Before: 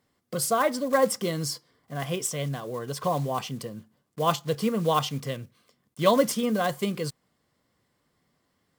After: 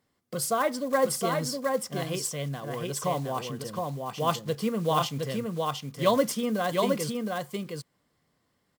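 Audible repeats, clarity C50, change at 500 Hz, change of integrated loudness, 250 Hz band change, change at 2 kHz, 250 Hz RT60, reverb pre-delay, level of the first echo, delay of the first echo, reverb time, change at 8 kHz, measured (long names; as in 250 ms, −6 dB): 1, no reverb audible, −1.0 dB, −2.0 dB, −1.0 dB, −1.0 dB, no reverb audible, no reverb audible, −3.5 dB, 715 ms, no reverb audible, −1.0 dB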